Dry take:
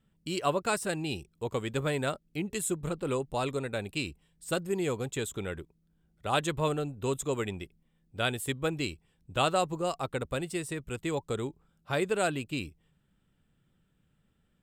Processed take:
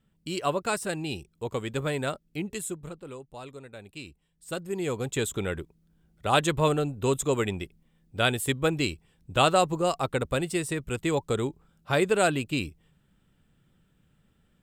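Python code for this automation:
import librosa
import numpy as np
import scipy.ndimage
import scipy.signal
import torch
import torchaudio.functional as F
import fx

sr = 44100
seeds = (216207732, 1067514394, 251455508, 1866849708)

y = fx.gain(x, sr, db=fx.line((2.46, 1.0), (3.14, -11.0), (3.72, -11.0), (4.7, -1.5), (5.21, 5.5)))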